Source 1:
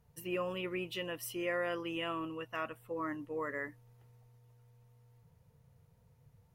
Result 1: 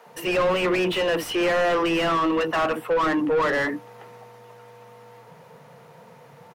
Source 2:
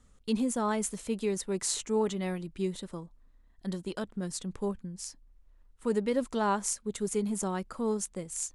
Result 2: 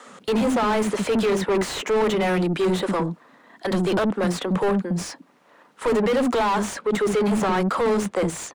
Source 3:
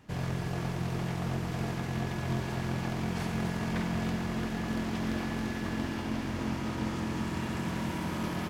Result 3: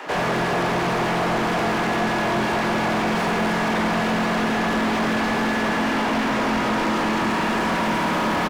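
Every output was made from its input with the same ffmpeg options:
-filter_complex "[0:a]highpass=f=170:w=0.5412,highpass=f=170:w=1.3066,acrossover=split=5100[a][b];[b]aeval=exprs='0.0355*(abs(mod(val(0)/0.0355+3,4)-2)-1)':c=same[c];[a][c]amix=inputs=2:normalize=0,acrossover=split=320[d][e];[d]adelay=60[f];[f][e]amix=inputs=2:normalize=0,acrossover=split=1200|3400|7400[g][h][i][j];[g]acompressor=threshold=-33dB:ratio=4[k];[h]acompressor=threshold=-43dB:ratio=4[l];[i]acompressor=threshold=-51dB:ratio=4[m];[j]acompressor=threshold=-50dB:ratio=4[n];[k][l][m][n]amix=inputs=4:normalize=0,asplit=2[o][p];[p]highpass=f=720:p=1,volume=34dB,asoftclip=type=tanh:threshold=-18dB[q];[o][q]amix=inputs=2:normalize=0,lowpass=f=1.2k:p=1,volume=-6dB,volume=6dB"

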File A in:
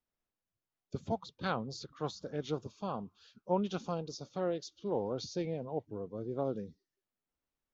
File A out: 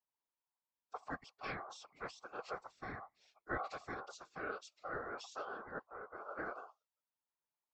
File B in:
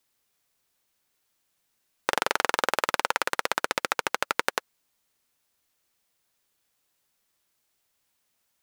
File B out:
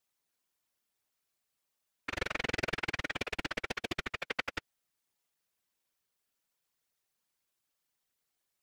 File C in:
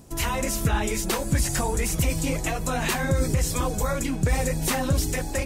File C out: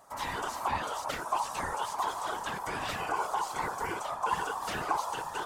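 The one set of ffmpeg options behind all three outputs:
-filter_complex "[0:a]acrossover=split=5700[a][b];[b]acompressor=threshold=-40dB:ratio=4:attack=1:release=60[c];[a][c]amix=inputs=2:normalize=0,aeval=exprs='val(0)*sin(2*PI*940*n/s)':c=same,afftfilt=real='hypot(re,im)*cos(2*PI*random(0))':imag='hypot(re,im)*sin(2*PI*random(1))':win_size=512:overlap=0.75"

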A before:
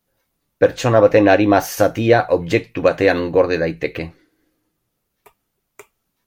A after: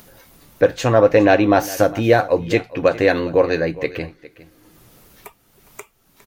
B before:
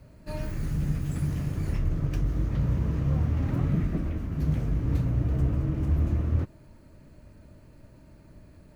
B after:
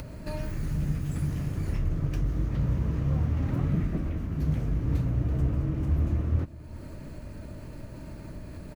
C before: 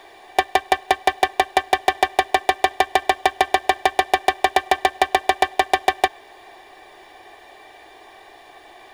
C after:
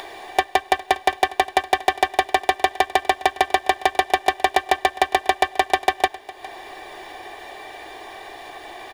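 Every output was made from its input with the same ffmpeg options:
-af "acompressor=mode=upward:threshold=-27dB:ratio=2.5,aecho=1:1:408:0.119,volume=-1dB"

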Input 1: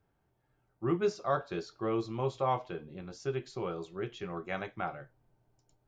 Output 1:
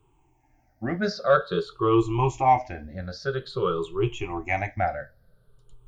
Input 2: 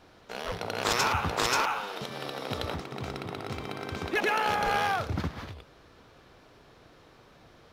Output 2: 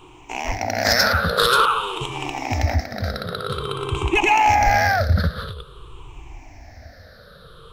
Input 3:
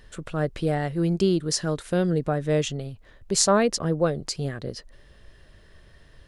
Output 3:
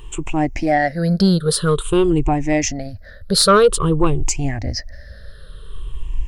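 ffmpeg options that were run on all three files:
-af "afftfilt=real='re*pow(10,21/40*sin(2*PI*(0.67*log(max(b,1)*sr/1024/100)/log(2)-(-0.5)*(pts-256)/sr)))':imag='im*pow(10,21/40*sin(2*PI*(0.67*log(max(b,1)*sr/1024/100)/log(2)-(-0.5)*(pts-256)/sr)))':win_size=1024:overlap=0.75,asubboost=boost=8.5:cutoff=71,acontrast=66,volume=-1dB"

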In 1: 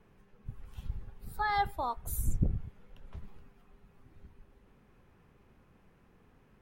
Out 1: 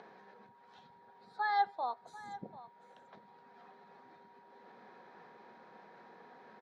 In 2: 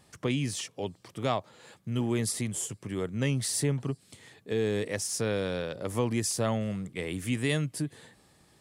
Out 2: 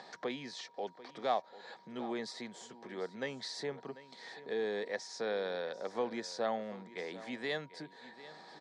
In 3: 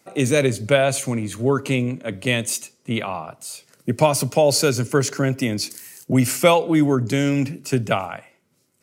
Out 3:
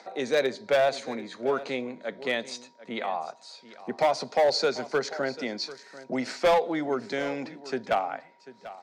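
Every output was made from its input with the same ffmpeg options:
-filter_complex "[0:a]acompressor=mode=upward:threshold=-33dB:ratio=2.5,highpass=f=230:w=0.5412,highpass=f=230:w=1.3066,equalizer=f=290:t=q:w=4:g=-8,equalizer=f=500:t=q:w=4:g=3,equalizer=f=760:t=q:w=4:g=9,equalizer=f=1.7k:t=q:w=4:g=6,equalizer=f=2.8k:t=q:w=4:g=-9,equalizer=f=4k:t=q:w=4:g=7,lowpass=f=5.2k:w=0.5412,lowpass=f=5.2k:w=1.3066,asoftclip=type=hard:threshold=-10dB,aeval=exprs='val(0)+0.002*sin(2*PI*950*n/s)':c=same,asplit=2[a][b];[b]aecho=0:1:742:0.15[c];[a][c]amix=inputs=2:normalize=0,volume=-7dB"

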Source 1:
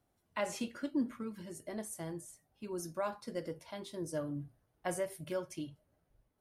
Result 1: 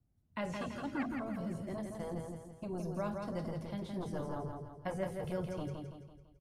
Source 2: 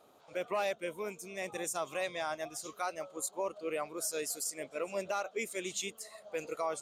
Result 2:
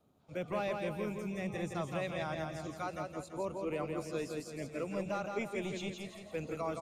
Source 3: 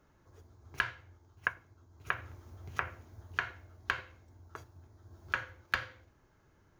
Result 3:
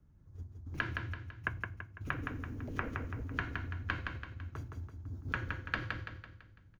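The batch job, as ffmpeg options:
-filter_complex "[0:a]acrossover=split=4400[a][b];[b]acompressor=threshold=-57dB:ratio=4:attack=1:release=60[c];[a][c]amix=inputs=2:normalize=0,agate=range=-10dB:threshold=-56dB:ratio=16:detection=peak,acrossover=split=210|880|5500[d][e][f][g];[d]aeval=exprs='0.0188*sin(PI/2*7.08*val(0)/0.0188)':c=same[h];[h][e][f][g]amix=inputs=4:normalize=0,aecho=1:1:167|334|501|668|835|1002:0.596|0.268|0.121|0.0543|0.0244|0.011,volume=-4dB"

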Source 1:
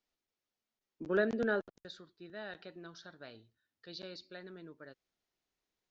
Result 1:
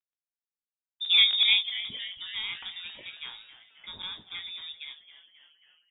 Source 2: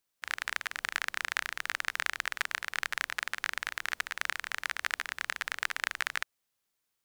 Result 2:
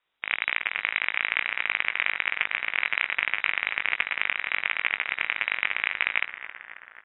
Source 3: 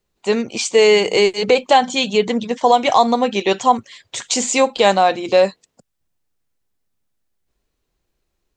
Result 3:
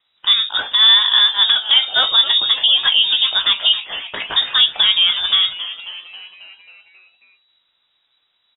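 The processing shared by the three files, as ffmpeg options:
-filter_complex "[0:a]acrossover=split=2700[a][b];[b]acompressor=threshold=-37dB:ratio=4:attack=1:release=60[c];[a][c]amix=inputs=2:normalize=0,lowshelf=f=140:g=-6,asplit=2[d][e];[e]acompressor=threshold=-25dB:ratio=6,volume=-1dB[f];[d][f]amix=inputs=2:normalize=0,alimiter=limit=-9.5dB:level=0:latency=1:release=198,acrusher=bits=11:mix=0:aa=0.000001,asplit=2[g][h];[h]adelay=19,volume=-9dB[i];[g][i]amix=inputs=2:normalize=0,asplit=2[j][k];[k]asplit=7[l][m][n][o][p][q][r];[l]adelay=270,afreqshift=130,volume=-14dB[s];[m]adelay=540,afreqshift=260,volume=-18.3dB[t];[n]adelay=810,afreqshift=390,volume=-22.6dB[u];[o]adelay=1080,afreqshift=520,volume=-26.9dB[v];[p]adelay=1350,afreqshift=650,volume=-31.2dB[w];[q]adelay=1620,afreqshift=780,volume=-35.5dB[x];[r]adelay=1890,afreqshift=910,volume=-39.8dB[y];[s][t][u][v][w][x][y]amix=inputs=7:normalize=0[z];[j][z]amix=inputs=2:normalize=0,lowpass=f=3.3k:t=q:w=0.5098,lowpass=f=3.3k:t=q:w=0.6013,lowpass=f=3.3k:t=q:w=0.9,lowpass=f=3.3k:t=q:w=2.563,afreqshift=-3900,volume=4dB"

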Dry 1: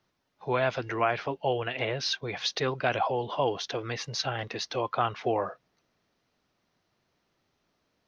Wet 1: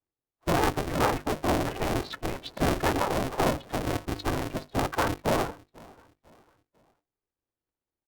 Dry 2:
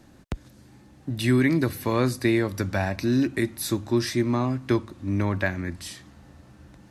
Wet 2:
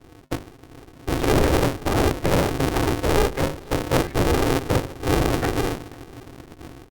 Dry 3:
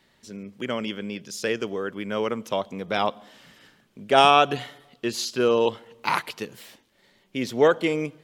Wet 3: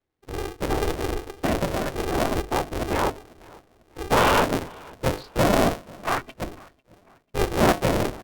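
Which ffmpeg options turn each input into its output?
-af "afftfilt=real='hypot(re,im)*cos(2*PI*random(0))':imag='hypot(re,im)*sin(2*PI*random(1))':win_size=512:overlap=0.75,aemphasis=mode=reproduction:type=riaa,aresample=11025,aresample=44100,acontrast=37,asoftclip=type=tanh:threshold=-11.5dB,lowshelf=f=290:g=4.5,bandreject=f=50:t=h:w=6,bandreject=f=100:t=h:w=6,bandreject=f=150:t=h:w=6,bandreject=f=200:t=h:w=6,bandreject=f=250:t=h:w=6,bandreject=f=300:t=h:w=6,bandreject=f=350:t=h:w=6,bandreject=f=400:t=h:w=6,bandreject=f=450:t=h:w=6,bandreject=f=500:t=h:w=6,afftdn=nr=23:nf=-31,aecho=1:1:496|992|1488:0.0631|0.0252|0.0101,aeval=exprs='0.562*(cos(1*acos(clip(val(0)/0.562,-1,1)))-cos(1*PI/2))+0.00316*(cos(5*acos(clip(val(0)/0.562,-1,1)))-cos(5*PI/2))':c=same,highpass=f=160:p=1,aeval=exprs='val(0)*sgn(sin(2*PI*200*n/s))':c=same"

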